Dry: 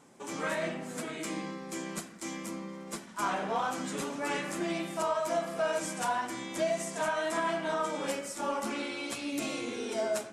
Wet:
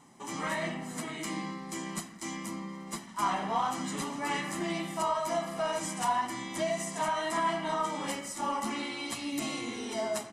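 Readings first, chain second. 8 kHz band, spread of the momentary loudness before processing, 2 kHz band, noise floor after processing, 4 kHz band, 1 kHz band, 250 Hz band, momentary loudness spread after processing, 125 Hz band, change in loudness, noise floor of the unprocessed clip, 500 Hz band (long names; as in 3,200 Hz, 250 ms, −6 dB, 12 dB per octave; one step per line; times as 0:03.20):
+1.0 dB, 8 LU, −1.0 dB, −47 dBFS, +2.0 dB, +2.5 dB, +0.5 dB, 8 LU, +2.5 dB, +0.5 dB, −47 dBFS, −2.5 dB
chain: comb filter 1 ms, depth 56%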